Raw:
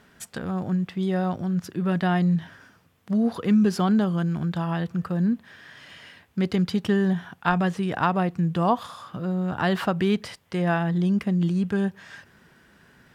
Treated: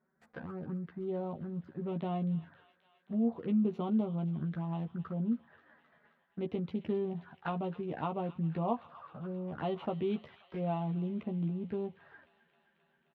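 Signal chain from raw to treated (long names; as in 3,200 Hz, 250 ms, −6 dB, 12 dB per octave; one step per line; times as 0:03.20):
adaptive Wiener filter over 15 samples
high-pass filter 220 Hz 6 dB per octave
noise gate −52 dBFS, range −12 dB
in parallel at −2 dB: downward compressor 6 to 1, threshold −34 dBFS, peak gain reduction 16 dB
on the sum: flanger swept by the level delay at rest 5.4 ms, full sweep at −22.5 dBFS
high-frequency loss of the air 390 metres
double-tracking delay 13 ms −4.5 dB
delay with a high-pass on its return 265 ms, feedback 75%, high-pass 1,800 Hz, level −12 dB
level −9 dB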